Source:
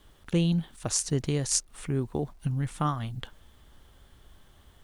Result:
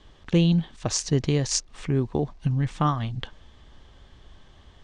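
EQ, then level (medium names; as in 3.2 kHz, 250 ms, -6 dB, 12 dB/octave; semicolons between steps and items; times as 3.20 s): low-pass 6.3 kHz 24 dB/octave; band-stop 1.4 kHz, Q 11; +5.0 dB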